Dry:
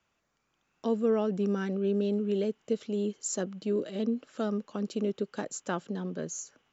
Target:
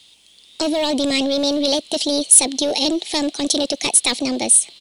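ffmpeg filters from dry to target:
ffmpeg -i in.wav -filter_complex "[0:a]asetrate=61740,aresample=44100,asplit=2[link_01][link_02];[link_02]asoftclip=type=hard:threshold=-28dB,volume=-11.5dB[link_03];[link_01][link_03]amix=inputs=2:normalize=0,apsyclip=27dB,highshelf=frequency=2300:width_type=q:width=3:gain=12.5,volume=-15dB" out.wav

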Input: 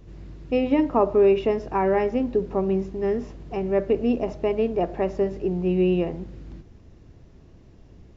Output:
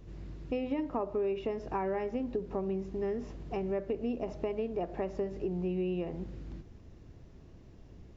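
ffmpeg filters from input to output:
ffmpeg -i in.wav -af "acompressor=threshold=-28dB:ratio=4,volume=-3.5dB" out.wav

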